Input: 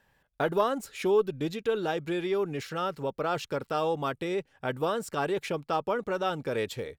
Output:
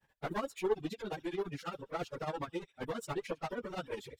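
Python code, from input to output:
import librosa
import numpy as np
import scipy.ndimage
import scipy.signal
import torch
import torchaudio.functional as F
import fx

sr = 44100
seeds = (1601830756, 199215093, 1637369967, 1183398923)

y = fx.echo_wet_highpass(x, sr, ms=130, feedback_pct=42, hz=2900.0, wet_db=-10)
y = fx.clip_asym(y, sr, top_db=-31.5, bottom_db=-16.0)
y = fx.granulator(y, sr, seeds[0], grain_ms=139.0, per_s=8.8, spray_ms=15.0, spread_st=0)
y = fx.stretch_vocoder_free(y, sr, factor=0.6)
y = fx.dereverb_blind(y, sr, rt60_s=0.73)
y = y * 10.0 ** (1.0 / 20.0)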